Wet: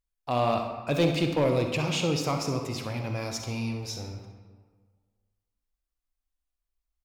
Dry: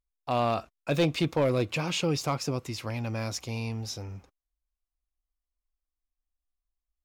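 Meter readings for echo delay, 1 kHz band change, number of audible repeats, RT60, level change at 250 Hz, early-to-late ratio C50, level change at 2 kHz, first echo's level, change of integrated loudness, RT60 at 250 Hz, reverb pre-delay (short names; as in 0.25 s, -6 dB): 65 ms, +1.5 dB, 1, 1.6 s, +2.0 dB, 5.0 dB, +1.0 dB, -12.0 dB, +1.5 dB, 1.6 s, 38 ms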